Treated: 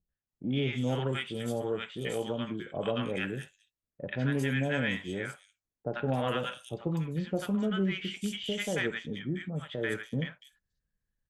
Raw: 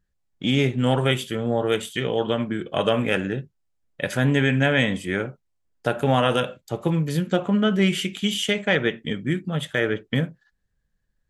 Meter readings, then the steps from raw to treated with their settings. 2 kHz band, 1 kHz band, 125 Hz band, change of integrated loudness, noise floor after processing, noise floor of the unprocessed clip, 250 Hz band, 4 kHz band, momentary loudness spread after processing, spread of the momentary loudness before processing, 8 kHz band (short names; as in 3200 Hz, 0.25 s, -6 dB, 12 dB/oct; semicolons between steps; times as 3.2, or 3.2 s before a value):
-10.0 dB, -11.5 dB, -9.0 dB, -9.5 dB, under -85 dBFS, -73 dBFS, -9.0 dB, -11.0 dB, 8 LU, 9 LU, -9.5 dB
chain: added harmonics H 6 -37 dB, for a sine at -6 dBFS; three bands offset in time lows, mids, highs 90/290 ms, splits 850/4200 Hz; gain -9 dB